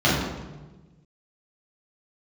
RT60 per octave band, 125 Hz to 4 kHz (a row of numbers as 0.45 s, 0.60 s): 1.8 s, 1.6 s, 1.3 s, 1.1 s, 0.95 s, 0.80 s